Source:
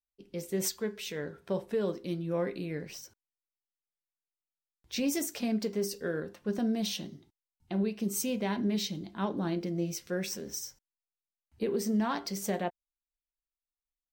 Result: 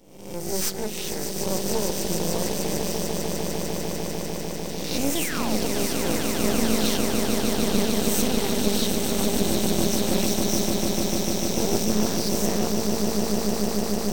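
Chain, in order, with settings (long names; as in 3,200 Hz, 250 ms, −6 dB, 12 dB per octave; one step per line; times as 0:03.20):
peak hold with a rise ahead of every peak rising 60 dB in 0.81 s
parametric band 1,200 Hz −14 dB 1.2 octaves
sound drawn into the spectrogram fall, 0:05.15–0:05.60, 440–3,700 Hz −37 dBFS
on a send: echo that builds up and dies away 149 ms, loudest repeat 8, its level −7 dB
on the sum: half-wave rectification
level +8 dB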